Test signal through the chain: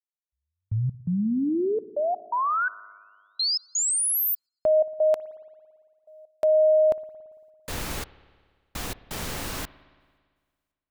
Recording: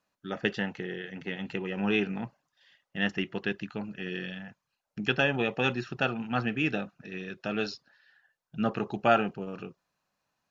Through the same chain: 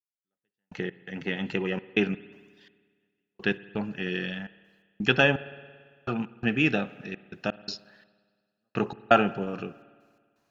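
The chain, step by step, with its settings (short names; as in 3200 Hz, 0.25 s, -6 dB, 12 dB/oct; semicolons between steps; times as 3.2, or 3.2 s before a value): step gate "....x.xxxx.x.xx" 84 bpm -60 dB; spring tank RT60 1.7 s, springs 56 ms, chirp 45 ms, DRR 17.5 dB; gain +5 dB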